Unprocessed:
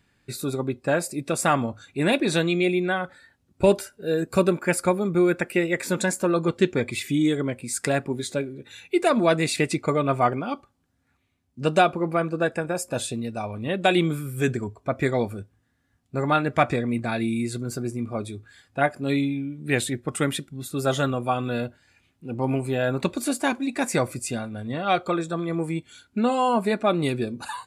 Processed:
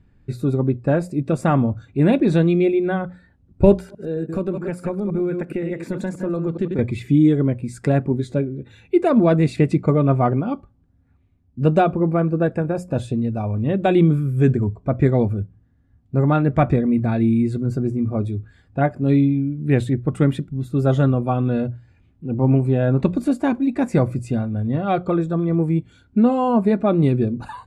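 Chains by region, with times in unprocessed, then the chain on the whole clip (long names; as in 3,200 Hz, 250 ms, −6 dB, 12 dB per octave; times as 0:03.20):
0:03.74–0:06.79: delay that plays each chunk backwards 105 ms, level −8 dB + high-pass filter 130 Hz + downward compressor 2 to 1, threshold −31 dBFS
whole clip: spectral tilt −4.5 dB per octave; mains-hum notches 60/120/180 Hz; level −1 dB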